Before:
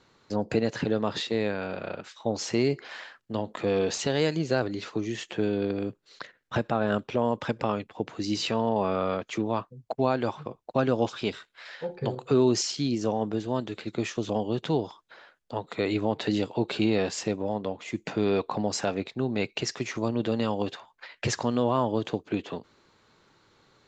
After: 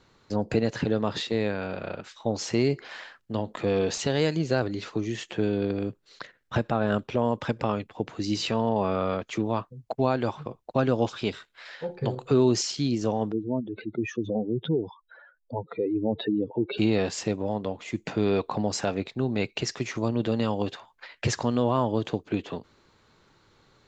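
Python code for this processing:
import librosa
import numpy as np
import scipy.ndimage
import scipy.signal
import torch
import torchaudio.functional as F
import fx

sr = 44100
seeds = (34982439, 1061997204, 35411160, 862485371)

y = fx.spec_expand(x, sr, power=2.7, at=(13.31, 16.77), fade=0.02)
y = fx.low_shelf(y, sr, hz=90.0, db=9.5)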